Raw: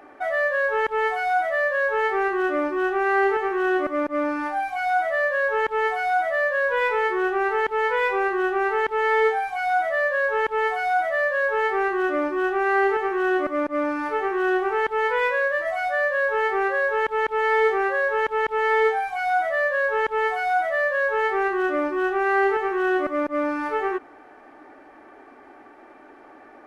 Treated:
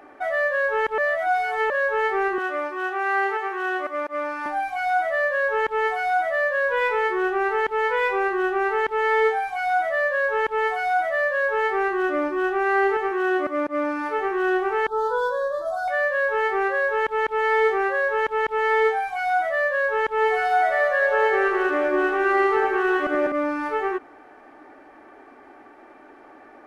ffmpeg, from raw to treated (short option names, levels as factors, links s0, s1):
-filter_complex "[0:a]asettb=1/sr,asplit=3[s0][s1][s2];[s0]atrim=end=2.384[s3];[s1]atrim=start=2.38:end=4.46,asetpts=PTS-STARTPTS,afade=t=in:d=0.004:c=qsin,afade=t=out:st=2.076:d=0.004:c=qsin,highpass=570[s4];[s2]atrim=start=4.456[s5];[s3][s4]acrossfade=d=0.004:c1=hsin:c2=qsin[s6];[s6][s5]acrossfade=d=0.004:c1=qsin:c2=hsin,asettb=1/sr,asplit=3[s7][s8][s9];[s7]atrim=end=13.114[s10];[s8]atrim=start=13.11:end=14.18,asetpts=PTS-STARTPTS,afade=t=in:d=0.004:c=qsin,afade=t=out:st=1.066:d=0.004:c=qsin,highpass=f=130:p=1[s11];[s9]atrim=start=14.176[s12];[s10][s11]acrossfade=d=0.004:c1=hsin:c2=qsin[s13];[s13][s12]acrossfade=d=0.004:c1=qsin:c2=hsin,asettb=1/sr,asplit=3[s14][s15][s16];[s14]atrim=end=14.874[s17];[s15]atrim=start=14.87:end=15.88,asetpts=PTS-STARTPTS,afade=t=in:d=0.004:c=qsin,afade=t=out:st=1.006:d=0.004:c=qsin,asuperstop=centerf=2300:order=12:qfactor=1.2[s18];[s16]atrim=start=15.876[s19];[s17][s18]acrossfade=d=0.004:c1=hsin:c2=qsin[s20];[s20][s19]acrossfade=d=0.004:c1=qsin:c2=hsin,asettb=1/sr,asplit=3[s21][s22][s23];[s21]atrim=end=20.094[s24];[s22]atrim=start=20.09:end=23.32,asetpts=PTS-STARTPTS,afade=t=in:d=0.004:c=qsin,afade=t=out:st=3.226:d=0.004:c=qsin,aecho=1:1:80|192|348.8|568.3|875.6:0.631|0.398|0.251|0.158|0.1,atrim=end_sample=142443[s25];[s23]atrim=start=23.316[s26];[s24][s25]acrossfade=d=0.004:c1=hsin:c2=qsin[s27];[s27][s26]acrossfade=d=0.004:c1=qsin:c2=hsin,asplit=3[s28][s29][s30];[s28]atrim=end=0.982[s31];[s29]atrim=start=0.978:end=1.702,asetpts=PTS-STARTPTS,areverse[s32];[s30]atrim=start=1.698[s33];[s31][s32]acrossfade=d=0.004:c1=hsin:c2=hsin[s34];[s34][s33]acrossfade=d=0.004:c1=hsin:c2=hsin"